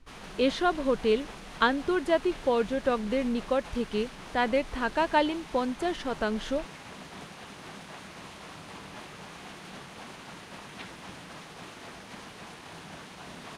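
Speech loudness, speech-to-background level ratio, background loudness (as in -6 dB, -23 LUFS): -28.5 LUFS, 15.5 dB, -44.0 LUFS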